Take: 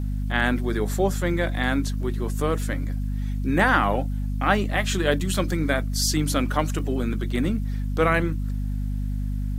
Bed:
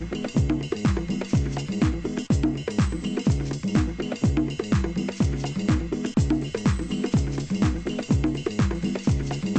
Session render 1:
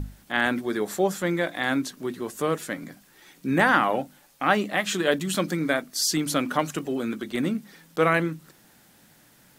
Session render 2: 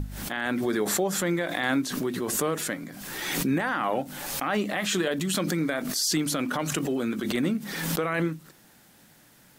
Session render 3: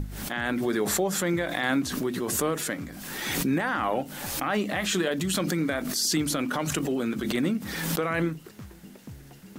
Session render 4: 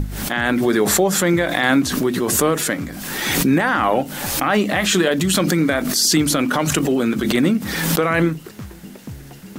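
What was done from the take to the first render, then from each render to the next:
notches 50/100/150/200/250 Hz
limiter -16.5 dBFS, peak gain reduction 11 dB; backwards sustainer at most 35 dB/s
add bed -21 dB
gain +9.5 dB

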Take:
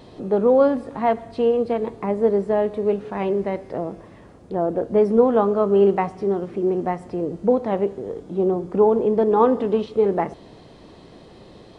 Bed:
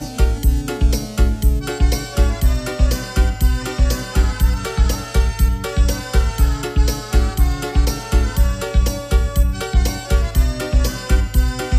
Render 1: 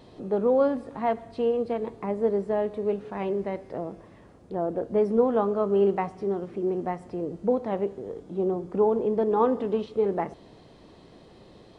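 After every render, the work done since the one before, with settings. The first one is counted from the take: gain -6 dB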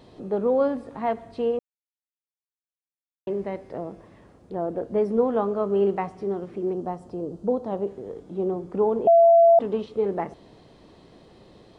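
1.59–3.27 mute; 6.73–7.87 bell 2100 Hz -13 dB 0.72 oct; 9.07–9.59 bleep 674 Hz -11 dBFS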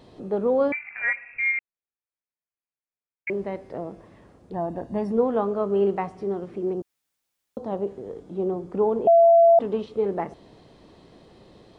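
0.72–3.3 inverted band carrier 2600 Hz; 4.53–5.12 comb 1.1 ms, depth 68%; 6.82–7.57 room tone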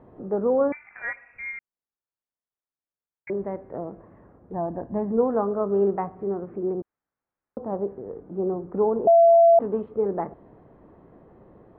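LPF 1600 Hz 24 dB/oct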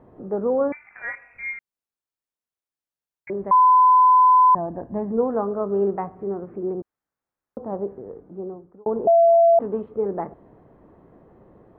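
1.11–1.54 doubler 22 ms -3.5 dB; 3.51–4.55 bleep 1010 Hz -10.5 dBFS; 7.98–8.86 fade out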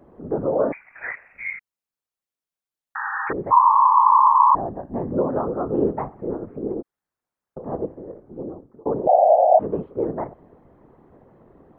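whisperiser; 2.95–3.33 painted sound noise 770–1900 Hz -27 dBFS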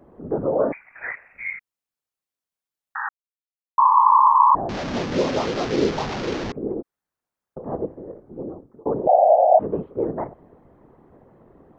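3.09–3.78 mute; 4.69–6.52 delta modulation 32 kbps, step -22 dBFS

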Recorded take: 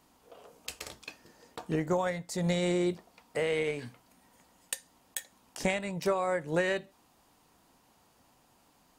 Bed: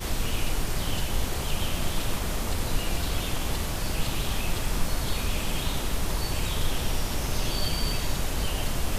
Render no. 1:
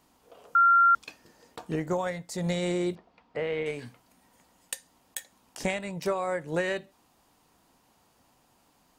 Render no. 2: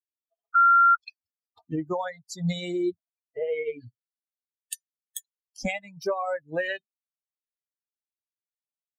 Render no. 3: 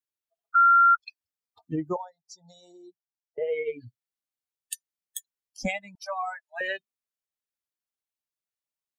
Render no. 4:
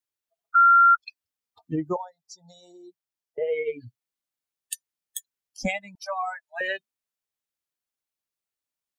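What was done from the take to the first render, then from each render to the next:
0.55–0.95 bleep 1380 Hz -16 dBFS; 2.95–3.66 air absorption 220 m
per-bin expansion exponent 3; in parallel at +1.5 dB: limiter -27.5 dBFS, peak gain reduction 11 dB
1.96–3.38 double band-pass 2200 Hz, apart 2.7 oct; 5.95–6.61 brick-wall FIR band-pass 590–12000 Hz
gain +2 dB

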